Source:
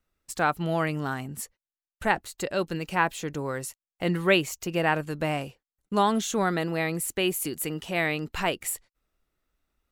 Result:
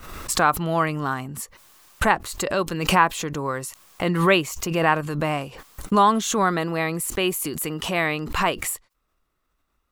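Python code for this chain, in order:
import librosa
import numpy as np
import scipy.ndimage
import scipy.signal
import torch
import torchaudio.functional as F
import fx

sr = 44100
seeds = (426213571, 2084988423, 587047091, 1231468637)

y = fx.peak_eq(x, sr, hz=1100.0, db=9.0, octaves=0.42)
y = fx.pre_swell(y, sr, db_per_s=60.0)
y = F.gain(torch.from_numpy(y), 2.5).numpy()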